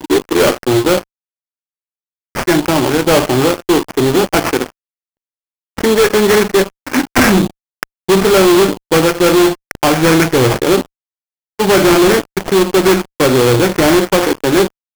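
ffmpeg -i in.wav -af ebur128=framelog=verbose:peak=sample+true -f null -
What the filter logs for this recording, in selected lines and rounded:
Integrated loudness:
  I:         -12.2 LUFS
  Threshold: -22.6 LUFS
Loudness range:
  LRA:         3.6 LU
  Threshold: -33.1 LUFS
  LRA low:   -15.1 LUFS
  LRA high:  -11.6 LUFS
Sample peak:
  Peak:       -4.6 dBFS
True peak:
  Peak:       -3.1 dBFS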